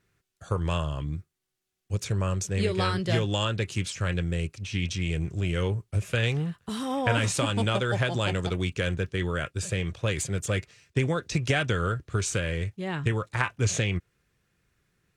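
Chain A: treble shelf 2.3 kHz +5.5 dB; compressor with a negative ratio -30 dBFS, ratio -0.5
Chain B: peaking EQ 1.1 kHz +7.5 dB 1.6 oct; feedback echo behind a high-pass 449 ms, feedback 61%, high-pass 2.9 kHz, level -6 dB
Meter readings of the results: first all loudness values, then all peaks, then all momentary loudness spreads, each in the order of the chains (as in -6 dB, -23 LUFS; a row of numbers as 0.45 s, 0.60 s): -31.5 LUFS, -26.0 LUFS; -10.0 dBFS, -6.0 dBFS; 6 LU, 8 LU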